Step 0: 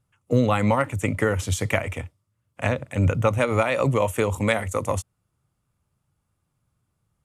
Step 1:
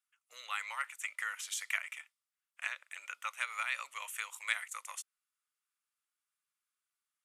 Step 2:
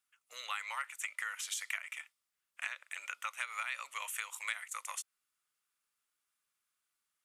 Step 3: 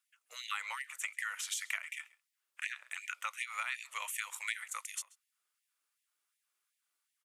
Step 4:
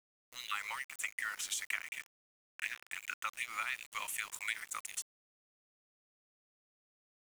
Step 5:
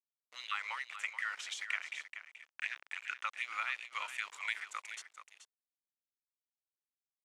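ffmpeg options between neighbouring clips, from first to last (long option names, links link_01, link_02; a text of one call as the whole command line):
ffmpeg -i in.wav -af "highpass=frequency=1400:width=0.5412,highpass=frequency=1400:width=1.3066,volume=-7dB" out.wav
ffmpeg -i in.wav -af "acompressor=threshold=-41dB:ratio=3,volume=4.5dB" out.wav
ffmpeg -i in.wav -filter_complex "[0:a]asplit=2[link_01][link_02];[link_02]adelay=134.1,volume=-22dB,highshelf=frequency=4000:gain=-3.02[link_03];[link_01][link_03]amix=inputs=2:normalize=0,afftfilt=real='re*gte(b*sr/1024,230*pow(1800/230,0.5+0.5*sin(2*PI*2.7*pts/sr)))':imag='im*gte(b*sr/1024,230*pow(1800/230,0.5+0.5*sin(2*PI*2.7*pts/sr)))':win_size=1024:overlap=0.75,volume=1dB" out.wav
ffmpeg -i in.wav -af "aeval=exprs='val(0)*gte(abs(val(0)),0.00501)':channel_layout=same" out.wav
ffmpeg -i in.wav -af "highpass=480,lowpass=4200,aecho=1:1:429:0.282,volume=1dB" out.wav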